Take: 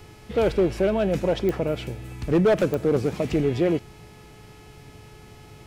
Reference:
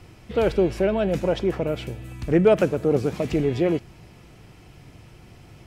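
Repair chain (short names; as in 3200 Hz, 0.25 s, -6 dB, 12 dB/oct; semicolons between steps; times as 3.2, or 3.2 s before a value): clip repair -14 dBFS; de-click; de-hum 426.1 Hz, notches 31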